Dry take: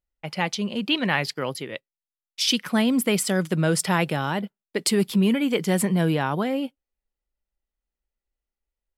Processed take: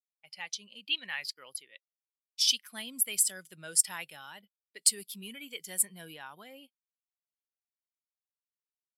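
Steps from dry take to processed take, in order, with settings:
first-order pre-emphasis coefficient 0.97
every bin expanded away from the loudest bin 1.5 to 1
level +2 dB

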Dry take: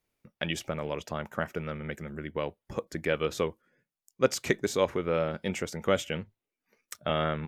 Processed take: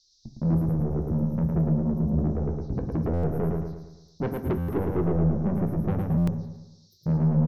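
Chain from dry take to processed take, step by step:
spectral magnitudes quantised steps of 15 dB
inverse Chebyshev band-stop filter 700–7,900 Hz, stop band 40 dB
noise gate −52 dBFS, range −18 dB
spectral tilt −2.5 dB per octave
in parallel at +2 dB: brickwall limiter −28 dBFS, peak gain reduction 16 dB
on the sum: noise in a band 3,800–6,000 Hz −70 dBFS
phaser swept by the level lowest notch 210 Hz, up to 4,500 Hz, full sweep at −30 dBFS
soft clipping −28 dBFS, distortion −8 dB
repeating echo 110 ms, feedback 47%, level −3.5 dB
convolution reverb RT60 0.40 s, pre-delay 7 ms, DRR 7.5 dB
buffer that repeats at 0:03.13/0:04.58/0:06.17, samples 512, times 8
level +5 dB

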